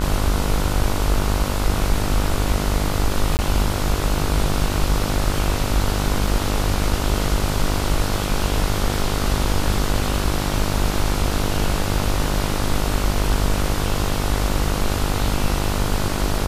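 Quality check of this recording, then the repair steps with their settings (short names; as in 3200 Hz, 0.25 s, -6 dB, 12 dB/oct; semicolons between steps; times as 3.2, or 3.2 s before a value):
buzz 50 Hz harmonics 30 -24 dBFS
3.37–3.39 gap 19 ms
6.27 gap 2.3 ms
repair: de-hum 50 Hz, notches 30; interpolate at 3.37, 19 ms; interpolate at 6.27, 2.3 ms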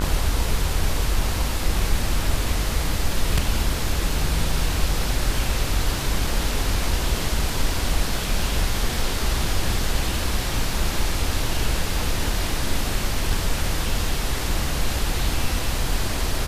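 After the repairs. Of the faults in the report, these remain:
none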